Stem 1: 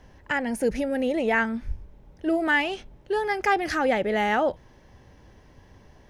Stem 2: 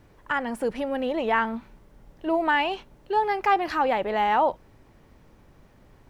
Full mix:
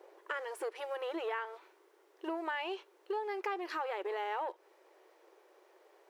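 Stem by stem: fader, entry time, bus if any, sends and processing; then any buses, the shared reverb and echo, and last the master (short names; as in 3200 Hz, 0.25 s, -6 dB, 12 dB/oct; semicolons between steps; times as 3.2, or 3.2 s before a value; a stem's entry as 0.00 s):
+1.0 dB, 0.00 s, no send, Bessel low-pass 540 Hz, order 4; sample leveller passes 2; auto duck -10 dB, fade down 0.70 s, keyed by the second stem
-5.0 dB, 0.00 s, no send, dry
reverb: off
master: brick-wall FIR high-pass 330 Hz; compressor 4:1, threshold -35 dBFS, peak gain reduction 11 dB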